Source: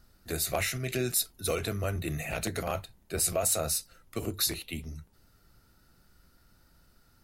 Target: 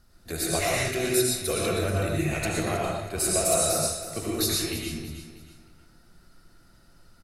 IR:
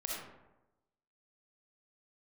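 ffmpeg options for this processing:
-filter_complex "[0:a]aecho=1:1:319|638|957:0.251|0.0804|0.0257[link_01];[1:a]atrim=start_sample=2205,atrim=end_sample=6615,asetrate=23373,aresample=44100[link_02];[link_01][link_02]afir=irnorm=-1:irlink=0"

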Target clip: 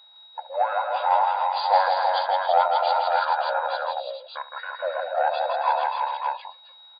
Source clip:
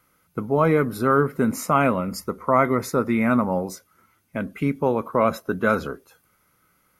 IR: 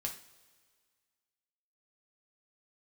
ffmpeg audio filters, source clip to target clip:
-filter_complex "[0:a]aeval=exprs='val(0)+0.00251*sin(2*PI*5700*n/s)':channel_layout=same,acontrast=54,afftfilt=real='re*between(b*sr/4096,740,7300)':imag='im*between(b*sr/4096,740,7300)':win_size=4096:overlap=0.75,asetrate=29433,aresample=44100,atempo=1.49831,asplit=2[link_01][link_02];[link_02]aecho=0:1:70|163|273|333|432|581:0.178|0.596|0.299|0.562|0.376|0.631[link_03];[link_01][link_03]amix=inputs=2:normalize=0,volume=-3.5dB"

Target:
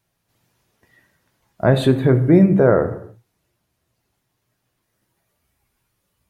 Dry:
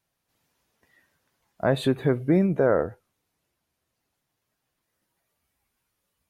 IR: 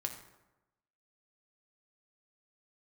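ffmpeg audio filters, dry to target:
-filter_complex "[0:a]asplit=2[link_01][link_02];[1:a]atrim=start_sample=2205,afade=type=out:start_time=0.34:duration=0.01,atrim=end_sample=15435,lowshelf=frequency=350:gain=7.5[link_03];[link_02][link_03]afir=irnorm=-1:irlink=0,volume=2dB[link_04];[link_01][link_04]amix=inputs=2:normalize=0,volume=-1.5dB"

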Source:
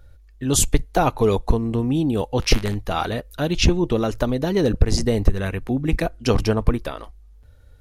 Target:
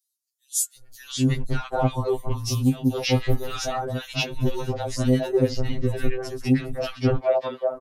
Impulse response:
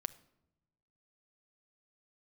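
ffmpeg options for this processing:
-filter_complex "[0:a]asettb=1/sr,asplit=3[link_01][link_02][link_03];[link_01]atrim=end=2.194[link_04];[link_02]atrim=start=2.19:end=4.11,asetpts=PTS-STARTPTS,afade=type=in:duration=0.004:curve=qsin,afade=type=out:start_time=1.916:duration=0.004:curve=qsin,highshelf=frequency=9700:gain=7.5[link_05];[link_03]atrim=start=4.106[link_06];[link_04][link_05]acrossfade=duration=0.004:curve1=hsin:curve2=qsin[link_07];[link_07][link_06]acrossfade=duration=0.004:curve1=qsin:curve2=hsin,asettb=1/sr,asplit=3[link_08][link_09][link_10];[link_08]atrim=end=6.404[link_11];[link_09]atrim=start=6.4:end=6.95,asetpts=PTS-STARTPTS,afade=type=in:duration=0.004:curve=qsin,afade=type=out:start_time=0.546:duration=0.004:curve=qsin,highpass=frequency=560:width_type=q:width=4.9[link_12];[link_10]atrim=start=6.946[link_13];[link_11][link_12]acrossfade=duration=0.004:curve1=hsin:curve2=qsin[link_14];[link_14][link_13]acrossfade=duration=0.004:curve1=qsin:curve2=hsin,acrossover=split=1300|5200[link_15][link_16][link_17];[link_16]adelay=580[link_18];[link_15]adelay=780[link_19];[link_19][link_18][link_17]amix=inputs=3:normalize=0,afftfilt=real='re*2.45*eq(mod(b,6),0)':imag='im*2.45*eq(mod(b,6),0)':win_size=2048:overlap=0.75"

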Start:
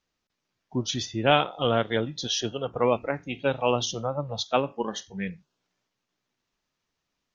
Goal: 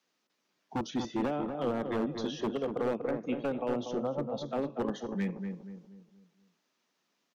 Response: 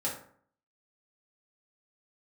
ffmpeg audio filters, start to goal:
-filter_complex "[0:a]highpass=frequency=190:width=0.5412,highpass=frequency=190:width=1.3066,acrossover=split=510|1900[link_01][link_02][link_03];[link_03]acompressor=threshold=-45dB:ratio=6[link_04];[link_01][link_02][link_04]amix=inputs=3:normalize=0,alimiter=limit=-18.5dB:level=0:latency=1:release=143,acrossover=split=440[link_05][link_06];[link_06]acompressor=threshold=-46dB:ratio=3[link_07];[link_05][link_07]amix=inputs=2:normalize=0,aeval=exprs='0.0422*(abs(mod(val(0)/0.0422+3,4)-2)-1)':channel_layout=same,asplit=2[link_08][link_09];[link_09]adelay=240,lowpass=frequency=1100:poles=1,volume=-5dB,asplit=2[link_10][link_11];[link_11]adelay=240,lowpass=frequency=1100:poles=1,volume=0.42,asplit=2[link_12][link_13];[link_13]adelay=240,lowpass=frequency=1100:poles=1,volume=0.42,asplit=2[link_14][link_15];[link_15]adelay=240,lowpass=frequency=1100:poles=1,volume=0.42,asplit=2[link_16][link_17];[link_17]adelay=240,lowpass=frequency=1100:poles=1,volume=0.42[link_18];[link_08][link_10][link_12][link_14][link_16][link_18]amix=inputs=6:normalize=0,volume=3dB"

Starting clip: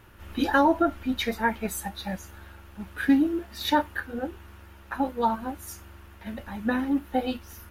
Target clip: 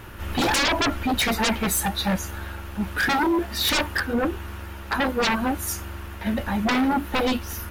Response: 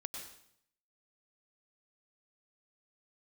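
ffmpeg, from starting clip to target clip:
-af "aeval=exprs='0.299*sin(PI/2*6.31*val(0)/0.299)':channel_layout=same,volume=-7.5dB"

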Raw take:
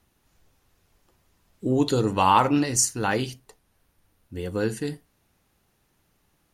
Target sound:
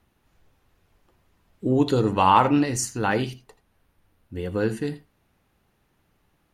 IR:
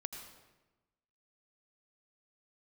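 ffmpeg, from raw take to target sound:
-filter_complex "[0:a]asoftclip=type=hard:threshold=-6.5dB,asplit=2[link_01][link_02];[1:a]atrim=start_sample=2205,afade=type=out:start_time=0.14:duration=0.01,atrim=end_sample=6615,lowpass=4000[link_03];[link_02][link_03]afir=irnorm=-1:irlink=0,volume=4dB[link_04];[link_01][link_04]amix=inputs=2:normalize=0,volume=-5dB"

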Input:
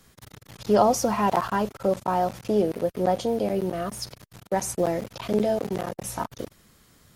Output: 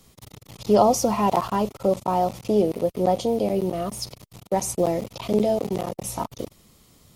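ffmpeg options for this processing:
ffmpeg -i in.wav -af "equalizer=frequency=1600:width_type=o:width=0.48:gain=-12.5,volume=2.5dB" out.wav

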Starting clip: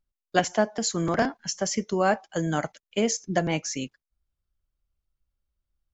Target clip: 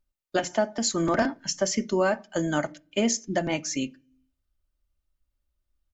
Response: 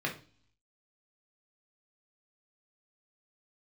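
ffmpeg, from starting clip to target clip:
-filter_complex "[0:a]aecho=1:1:3.3:0.5,alimiter=limit=-14dB:level=0:latency=1:release=258,asplit=2[link_01][link_02];[1:a]atrim=start_sample=2205,lowshelf=frequency=240:gain=10.5[link_03];[link_02][link_03]afir=irnorm=-1:irlink=0,volume=-21dB[link_04];[link_01][link_04]amix=inputs=2:normalize=0"

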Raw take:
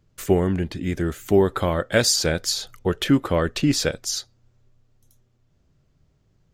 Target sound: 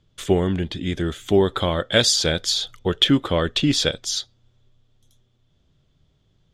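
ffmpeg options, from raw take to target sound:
ffmpeg -i in.wav -af "lowpass=9200,equalizer=frequency=3400:width=4.4:gain=15" out.wav

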